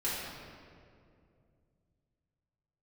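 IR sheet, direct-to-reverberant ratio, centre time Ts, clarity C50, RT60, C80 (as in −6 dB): −10.0 dB, 122 ms, −2.0 dB, 2.4 s, 0.5 dB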